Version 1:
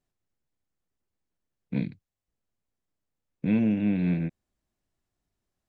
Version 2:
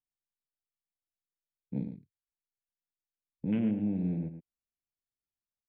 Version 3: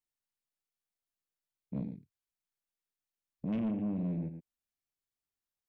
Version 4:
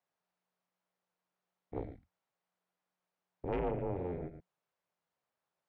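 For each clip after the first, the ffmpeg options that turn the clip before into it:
ffmpeg -i in.wav -af "afwtdn=0.01,aecho=1:1:110:0.316,volume=-6dB" out.wav
ffmpeg -i in.wav -af "asoftclip=type=tanh:threshold=-28.5dB" out.wav
ffmpeg -i in.wav -af "afreqshift=-180,bandpass=frequency=710:width_type=q:width=1:csg=0,volume=15dB" out.wav

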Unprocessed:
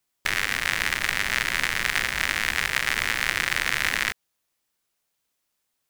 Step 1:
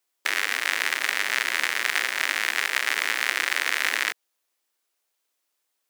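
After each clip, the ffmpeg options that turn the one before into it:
ffmpeg -i in.wav -af "highpass=frequency=300:width=0.5412,highpass=frequency=300:width=1.3066" out.wav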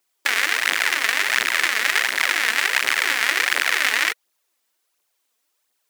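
ffmpeg -i in.wav -af "aphaser=in_gain=1:out_gain=1:delay=4.7:decay=0.55:speed=1.4:type=triangular,volume=3.5dB" out.wav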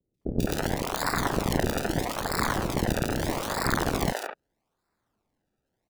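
ffmpeg -i in.wav -filter_complex "[0:a]acrusher=samples=28:mix=1:aa=0.000001:lfo=1:lforange=28:lforate=0.79,acrossover=split=510|2600[link_01][link_02][link_03];[link_03]adelay=140[link_04];[link_02]adelay=210[link_05];[link_01][link_05][link_04]amix=inputs=3:normalize=0,volume=-6dB" out.wav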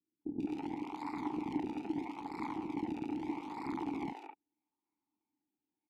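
ffmpeg -i in.wav -filter_complex "[0:a]asplit=3[link_01][link_02][link_03];[link_01]bandpass=frequency=300:width_type=q:width=8,volume=0dB[link_04];[link_02]bandpass=frequency=870:width_type=q:width=8,volume=-6dB[link_05];[link_03]bandpass=frequency=2240:width_type=q:width=8,volume=-9dB[link_06];[link_04][link_05][link_06]amix=inputs=3:normalize=0,aresample=32000,aresample=44100" out.wav

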